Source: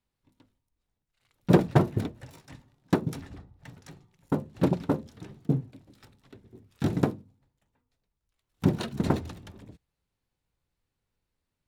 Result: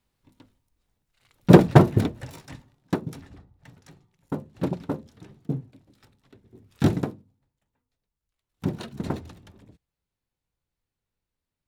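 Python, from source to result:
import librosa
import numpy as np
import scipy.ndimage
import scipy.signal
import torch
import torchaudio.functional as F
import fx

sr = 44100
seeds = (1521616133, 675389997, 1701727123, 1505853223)

y = fx.gain(x, sr, db=fx.line((2.42, 7.5), (3.01, -3.0), (6.43, -3.0), (6.88, 7.5), (7.04, -4.0)))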